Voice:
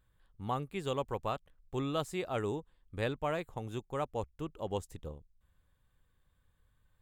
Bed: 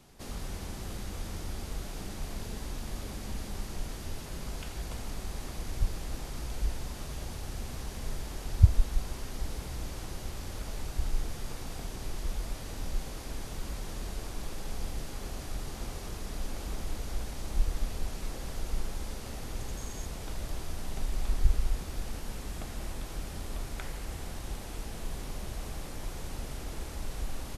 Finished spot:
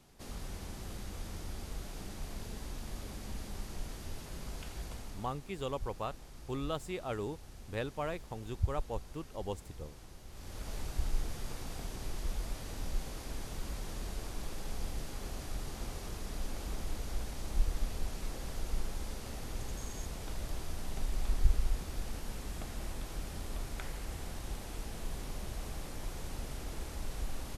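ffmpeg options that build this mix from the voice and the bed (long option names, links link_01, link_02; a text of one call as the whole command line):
ffmpeg -i stem1.wav -i stem2.wav -filter_complex "[0:a]adelay=4750,volume=-3dB[link_01];[1:a]volume=6dB,afade=type=out:start_time=4.82:duration=0.58:silence=0.375837,afade=type=in:start_time=10.28:duration=0.46:silence=0.298538[link_02];[link_01][link_02]amix=inputs=2:normalize=0" out.wav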